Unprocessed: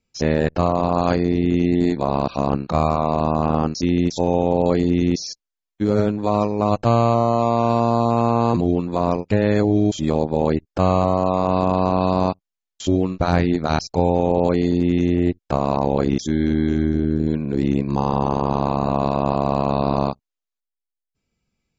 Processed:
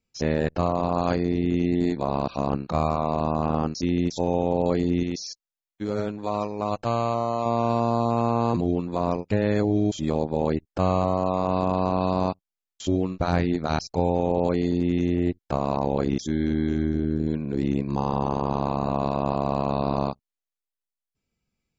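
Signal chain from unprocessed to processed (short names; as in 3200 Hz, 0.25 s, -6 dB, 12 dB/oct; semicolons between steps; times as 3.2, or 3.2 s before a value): 5.03–7.46 low shelf 470 Hz -6.5 dB; gain -5 dB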